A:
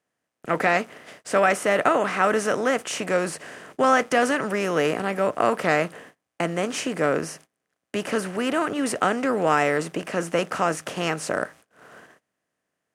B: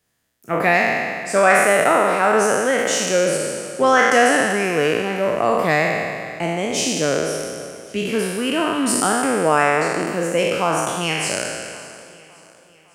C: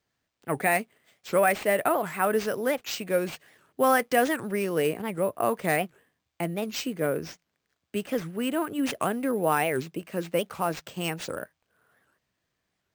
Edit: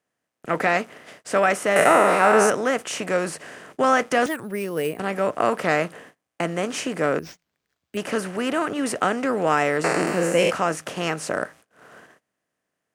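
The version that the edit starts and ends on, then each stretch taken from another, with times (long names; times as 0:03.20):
A
0:01.76–0:02.50: punch in from B
0:04.26–0:04.99: punch in from C
0:07.19–0:07.97: punch in from C
0:09.84–0:10.51: punch in from B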